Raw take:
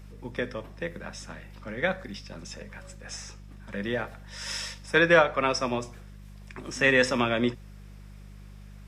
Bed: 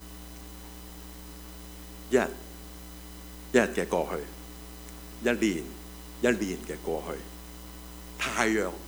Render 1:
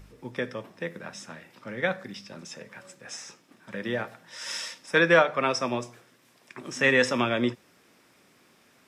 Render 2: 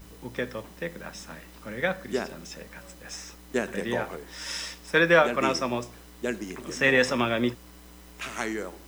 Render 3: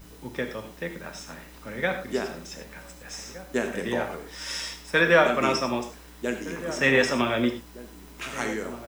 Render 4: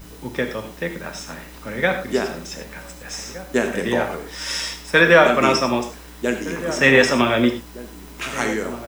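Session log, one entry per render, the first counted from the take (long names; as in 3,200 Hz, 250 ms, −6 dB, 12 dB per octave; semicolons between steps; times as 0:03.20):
hum removal 50 Hz, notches 4
mix in bed −5.5 dB
slap from a distant wall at 260 metres, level −14 dB; reverb whose tail is shaped and stops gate 130 ms flat, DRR 5.5 dB
level +7 dB; brickwall limiter −1 dBFS, peak gain reduction 1.5 dB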